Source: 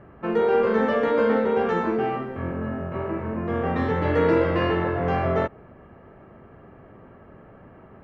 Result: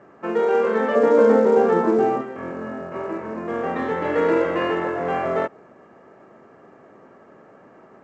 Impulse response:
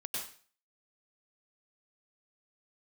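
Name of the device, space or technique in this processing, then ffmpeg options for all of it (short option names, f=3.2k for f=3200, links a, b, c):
telephone: -filter_complex "[0:a]asettb=1/sr,asplit=3[a][b][c];[a]atrim=end=0.954[d];[b]atrim=start=0.95:end=2.21,asetpts=PTS-STARTPTS,afade=t=in:d=0.004:c=qsin,afade=t=out:st=1.256:d=0.004:c=qsin,tiltshelf=f=1.3k:g=7.5[e];[c]atrim=start=2.206[f];[d][e]acrossfade=d=0.004:c1=hsin:c2=qsin[g];[g][f]acrossfade=d=0.004:c1=qsin:c2=hsin,highpass=260,lowpass=3.3k,volume=1.5dB" -ar 16000 -c:a pcm_mulaw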